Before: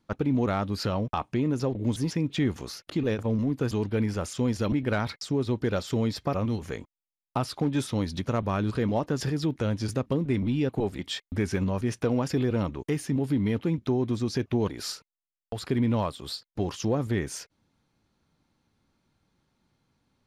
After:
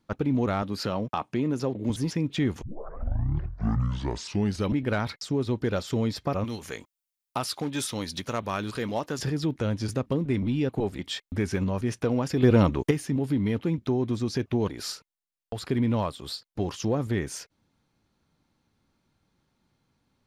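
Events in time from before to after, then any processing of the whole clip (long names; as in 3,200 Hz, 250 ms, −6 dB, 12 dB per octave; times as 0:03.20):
0:00.62–0:01.90: high-pass filter 130 Hz
0:02.62: tape start 2.15 s
0:06.44–0:09.19: spectral tilt +2.5 dB per octave
0:12.43–0:12.91: clip gain +8 dB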